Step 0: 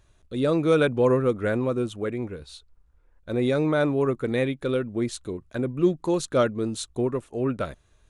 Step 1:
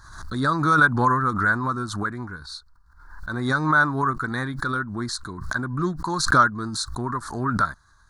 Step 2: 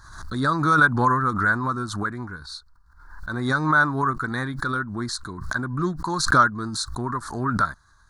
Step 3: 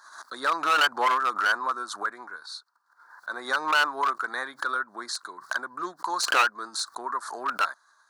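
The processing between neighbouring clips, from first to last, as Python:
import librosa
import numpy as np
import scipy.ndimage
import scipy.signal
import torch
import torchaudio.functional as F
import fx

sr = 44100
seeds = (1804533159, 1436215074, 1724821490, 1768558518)

y1 = fx.curve_eq(x, sr, hz=(180.0, 320.0, 510.0, 1000.0, 1600.0, 2700.0, 4300.0, 7400.0), db=(0, -5, -16, 12, 14, -24, 11, 2))
y1 = fx.pre_swell(y1, sr, db_per_s=64.0)
y2 = y1
y3 = np.minimum(y2, 2.0 * 10.0 ** (-17.0 / 20.0) - y2)
y3 = fx.ladder_highpass(y3, sr, hz=440.0, resonance_pct=25)
y3 = y3 * 10.0 ** (4.0 / 20.0)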